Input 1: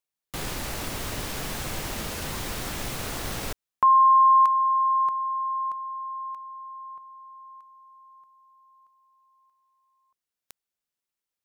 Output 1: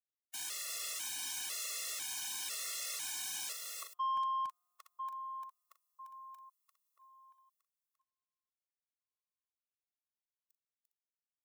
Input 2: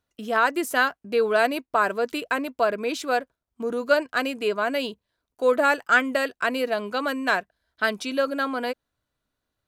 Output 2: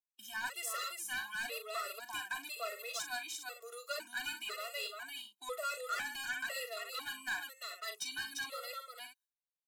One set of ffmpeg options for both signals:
-filter_complex "[0:a]bandreject=f=4600:w=18,agate=range=0.0251:threshold=0.00501:ratio=16:release=314:detection=peak,aecho=1:1:40|346|407:0.282|0.562|0.224,acrossover=split=9600[s0][s1];[s1]acompressor=threshold=0.00224:ratio=4:attack=1:release=60[s2];[s0][s2]amix=inputs=2:normalize=0,highpass=f=410:p=1,aderivative,asoftclip=type=tanh:threshold=0.02,afftfilt=real='re*gt(sin(2*PI*1*pts/sr)*(1-2*mod(floor(b*sr/1024/360),2)),0)':imag='im*gt(sin(2*PI*1*pts/sr)*(1-2*mod(floor(b*sr/1024/360),2)),0)':win_size=1024:overlap=0.75,volume=1.58"

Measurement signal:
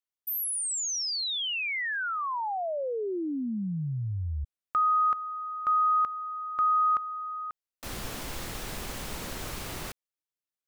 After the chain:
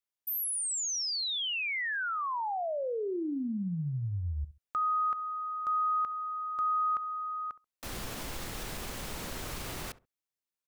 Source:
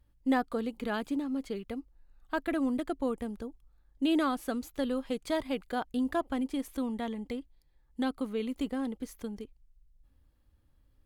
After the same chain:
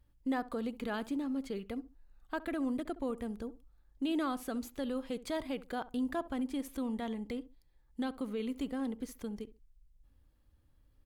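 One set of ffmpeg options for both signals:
-filter_complex "[0:a]acompressor=threshold=0.0316:ratio=2:attack=0.12:release=124:knee=1:detection=rms,asplit=2[s0][s1];[s1]adelay=67,lowpass=f=1100:p=1,volume=0.168,asplit=2[s2][s3];[s3]adelay=67,lowpass=f=1100:p=1,volume=0.24[s4];[s2][s4]amix=inputs=2:normalize=0[s5];[s0][s5]amix=inputs=2:normalize=0,volume=0.891"

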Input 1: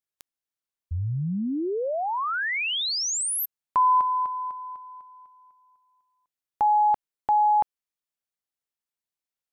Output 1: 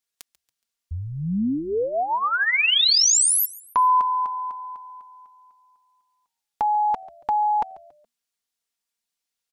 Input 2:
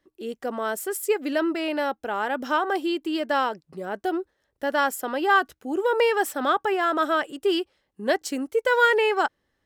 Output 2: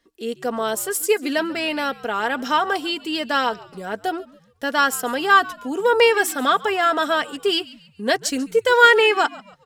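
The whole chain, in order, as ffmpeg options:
-filter_complex "[0:a]equalizer=f=5500:t=o:w=2.8:g=7.5,aecho=1:1:4.3:0.52,asplit=4[s0][s1][s2][s3];[s1]adelay=140,afreqshift=-81,volume=0.0944[s4];[s2]adelay=280,afreqshift=-162,volume=0.0359[s5];[s3]adelay=420,afreqshift=-243,volume=0.0136[s6];[s0][s4][s5][s6]amix=inputs=4:normalize=0,volume=1.19"

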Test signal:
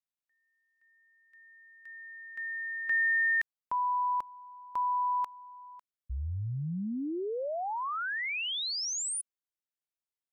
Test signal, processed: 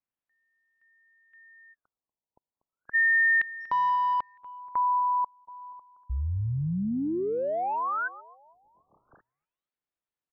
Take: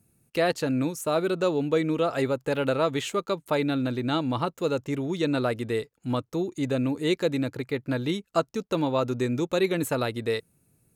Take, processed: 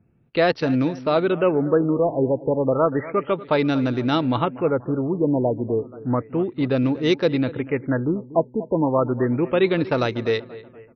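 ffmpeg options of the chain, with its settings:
-af "aecho=1:1:240|480|720|960:0.141|0.0678|0.0325|0.0156,adynamicsmooth=sensitivity=5.5:basefreq=2600,afftfilt=real='re*lt(b*sr/1024,990*pow(6400/990,0.5+0.5*sin(2*PI*0.32*pts/sr)))':imag='im*lt(b*sr/1024,990*pow(6400/990,0.5+0.5*sin(2*PI*0.32*pts/sr)))':win_size=1024:overlap=0.75,volume=1.88"

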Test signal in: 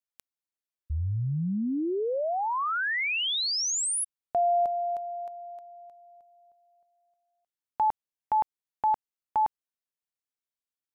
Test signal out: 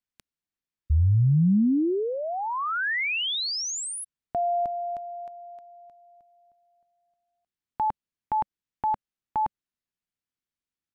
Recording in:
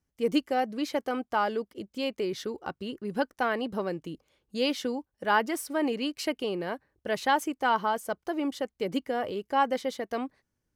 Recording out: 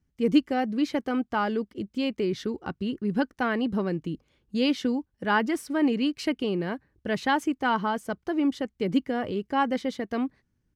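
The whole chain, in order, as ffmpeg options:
-af "firequalizer=gain_entry='entry(200,0);entry(550,-11);entry(1700,-7);entry(13000,-18)':delay=0.05:min_phase=1,volume=2.82"

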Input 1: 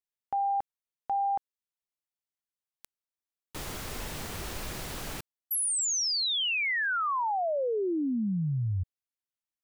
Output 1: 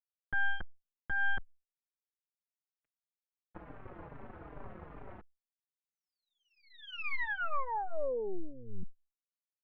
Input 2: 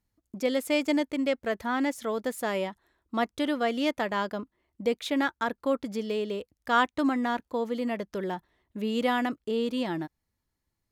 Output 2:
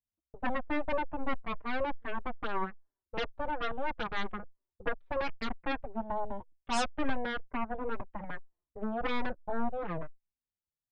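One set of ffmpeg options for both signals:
-filter_complex "[0:a]lowpass=f=1300:w=0.5412,lowpass=f=1300:w=1.3066,aeval=exprs='0.224*(cos(1*acos(clip(val(0)/0.224,-1,1)))-cos(1*PI/2))+0.0631*(cos(3*acos(clip(val(0)/0.224,-1,1)))-cos(3*PI/2))+0.0631*(cos(8*acos(clip(val(0)/0.224,-1,1)))-cos(8*PI/2))':c=same,asplit=2[s0][s1];[s1]adelay=4.6,afreqshift=-2.4[s2];[s0][s2]amix=inputs=2:normalize=1,volume=0.75"

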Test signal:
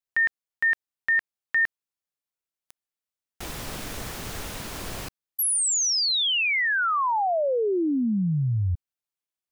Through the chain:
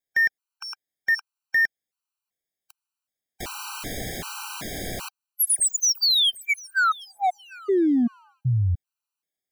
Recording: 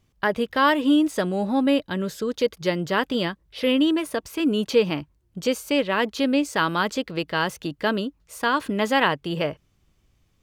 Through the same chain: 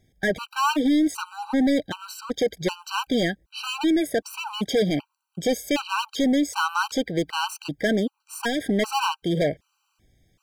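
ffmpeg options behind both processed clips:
-af "lowshelf=f=110:g=-5,asoftclip=type=hard:threshold=0.075,afftfilt=real='re*gt(sin(2*PI*1.3*pts/sr)*(1-2*mod(floor(b*sr/1024/780),2)),0)':imag='im*gt(sin(2*PI*1.3*pts/sr)*(1-2*mod(floor(b*sr/1024/780),2)),0)':win_size=1024:overlap=0.75,volume=1.88"

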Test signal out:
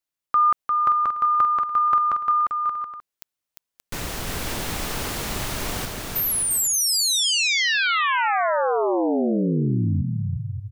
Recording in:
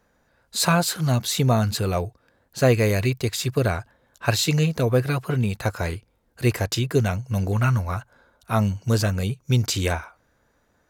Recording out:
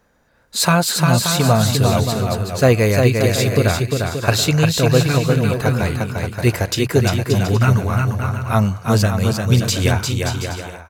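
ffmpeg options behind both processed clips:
-af "aecho=1:1:350|577.5|725.4|821.5|884:0.631|0.398|0.251|0.158|0.1,volume=1.68"

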